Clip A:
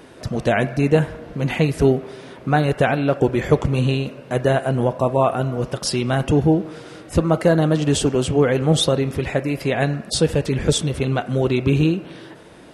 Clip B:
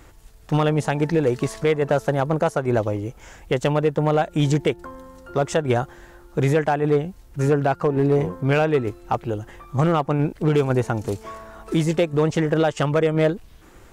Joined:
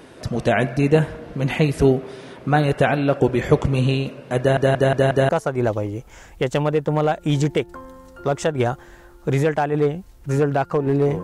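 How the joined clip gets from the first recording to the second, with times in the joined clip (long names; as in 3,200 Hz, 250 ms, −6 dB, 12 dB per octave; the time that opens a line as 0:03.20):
clip A
0:04.39: stutter in place 0.18 s, 5 plays
0:05.29: continue with clip B from 0:02.39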